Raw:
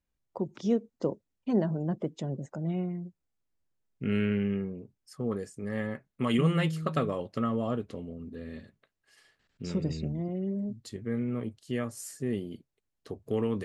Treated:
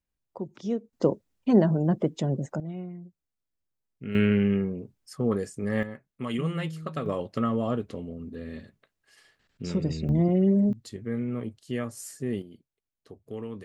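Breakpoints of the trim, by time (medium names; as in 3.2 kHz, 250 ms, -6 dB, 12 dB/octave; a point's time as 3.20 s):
-2.5 dB
from 0.93 s +7 dB
from 2.60 s -5 dB
from 4.15 s +6 dB
from 5.83 s -4 dB
from 7.06 s +3 dB
from 10.09 s +11 dB
from 10.73 s +1 dB
from 12.42 s -7.5 dB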